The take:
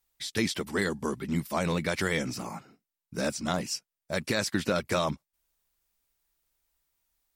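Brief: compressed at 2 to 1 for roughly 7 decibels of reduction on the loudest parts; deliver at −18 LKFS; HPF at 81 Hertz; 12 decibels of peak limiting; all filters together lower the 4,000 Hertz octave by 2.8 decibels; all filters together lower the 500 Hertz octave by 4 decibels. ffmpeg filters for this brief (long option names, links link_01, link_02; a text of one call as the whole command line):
ffmpeg -i in.wav -af "highpass=81,equalizer=frequency=500:width_type=o:gain=-5,equalizer=frequency=4000:width_type=o:gain=-3.5,acompressor=threshold=-37dB:ratio=2,volume=25dB,alimiter=limit=-7dB:level=0:latency=1" out.wav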